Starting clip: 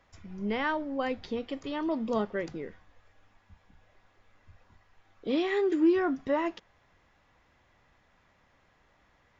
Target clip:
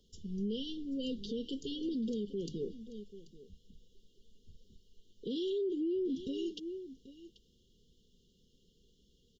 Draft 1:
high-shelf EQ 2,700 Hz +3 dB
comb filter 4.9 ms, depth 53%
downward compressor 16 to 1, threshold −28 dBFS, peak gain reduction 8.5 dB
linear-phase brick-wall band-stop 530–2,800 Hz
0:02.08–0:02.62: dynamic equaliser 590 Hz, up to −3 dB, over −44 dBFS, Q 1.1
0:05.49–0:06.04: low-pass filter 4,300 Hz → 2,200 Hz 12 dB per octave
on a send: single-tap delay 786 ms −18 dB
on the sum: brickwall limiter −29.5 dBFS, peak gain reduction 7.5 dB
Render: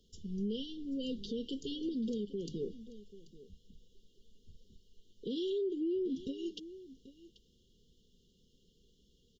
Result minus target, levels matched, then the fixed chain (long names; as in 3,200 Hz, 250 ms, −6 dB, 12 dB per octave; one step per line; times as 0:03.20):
downward compressor: peak gain reduction +8.5 dB
linear-phase brick-wall band-stop 530–2,800 Hz
high-shelf EQ 2,700 Hz +3 dB
comb filter 4.9 ms, depth 53%
0:02.08–0:02.62: dynamic equaliser 590 Hz, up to −3 dB, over −44 dBFS, Q 1.1
0:05.49–0:06.04: low-pass filter 4,300 Hz → 2,200 Hz 12 dB per octave
on a send: single-tap delay 786 ms −18 dB
on the sum: brickwall limiter −29.5 dBFS, peak gain reduction 12 dB